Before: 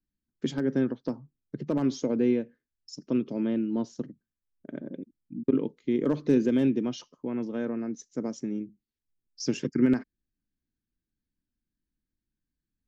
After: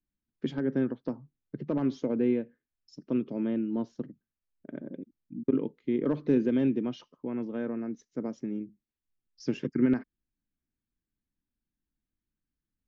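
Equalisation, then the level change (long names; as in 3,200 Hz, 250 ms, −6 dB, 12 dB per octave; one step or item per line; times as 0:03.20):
low-pass filter 3,100 Hz 12 dB per octave
−2.0 dB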